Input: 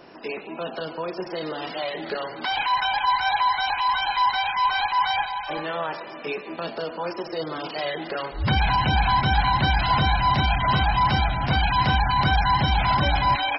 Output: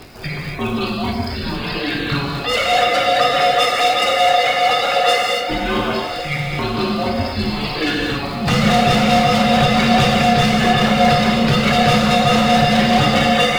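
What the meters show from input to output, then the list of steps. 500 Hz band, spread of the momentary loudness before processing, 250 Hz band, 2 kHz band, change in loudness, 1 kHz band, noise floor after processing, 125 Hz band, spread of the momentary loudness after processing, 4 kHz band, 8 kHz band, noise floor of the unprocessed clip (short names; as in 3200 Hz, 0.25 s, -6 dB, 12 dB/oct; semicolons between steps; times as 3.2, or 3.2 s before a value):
+13.5 dB, 11 LU, +15.0 dB, +6.5 dB, +7.5 dB, +4.5 dB, -25 dBFS, +5.0 dB, 9 LU, +8.5 dB, n/a, -38 dBFS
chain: reverb removal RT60 1.9 s; high shelf 3900 Hz +8 dB; crackle 130/s -35 dBFS; tremolo 4.7 Hz, depth 65%; frequency shift -280 Hz; overloaded stage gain 24 dB; on a send: diffused feedback echo 1.135 s, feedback 44%, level -12 dB; on the sum: non-linear reverb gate 0.3 s flat, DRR -3 dB; gain +8.5 dB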